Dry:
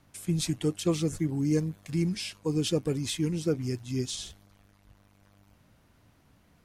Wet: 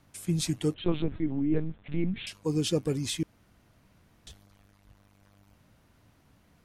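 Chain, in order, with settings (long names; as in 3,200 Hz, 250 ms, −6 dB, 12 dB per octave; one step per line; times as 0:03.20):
0:00.74–0:02.27: linear-prediction vocoder at 8 kHz pitch kept
0:03.23–0:04.27: fill with room tone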